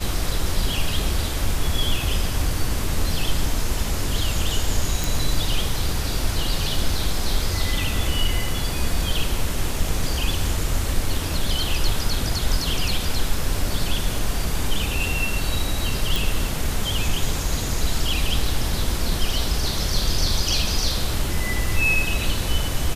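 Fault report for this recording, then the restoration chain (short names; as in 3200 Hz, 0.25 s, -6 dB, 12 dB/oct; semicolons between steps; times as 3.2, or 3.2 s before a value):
5.04 pop
16.16 pop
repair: de-click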